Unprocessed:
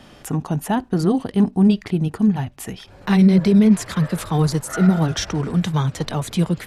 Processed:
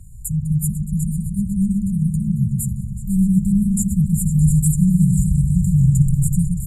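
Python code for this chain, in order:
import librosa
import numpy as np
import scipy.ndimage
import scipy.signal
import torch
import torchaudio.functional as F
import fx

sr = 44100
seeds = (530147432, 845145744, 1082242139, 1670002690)

y = fx.brickwall_bandstop(x, sr, low_hz=190.0, high_hz=6900.0)
y = fx.low_shelf(y, sr, hz=140.0, db=6.5)
y = y + 0.61 * np.pad(y, (int(3.0 * sr / 1000.0), 0))[:len(y)]
y = fx.echo_opening(y, sr, ms=124, hz=400, octaves=2, feedback_pct=70, wet_db=-3)
y = F.gain(torch.from_numpy(y), 7.0).numpy()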